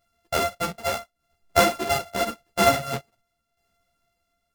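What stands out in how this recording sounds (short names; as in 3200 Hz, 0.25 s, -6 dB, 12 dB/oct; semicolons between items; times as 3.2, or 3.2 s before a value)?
a buzz of ramps at a fixed pitch in blocks of 64 samples; tremolo saw down 0.84 Hz, depth 60%; a shimmering, thickened sound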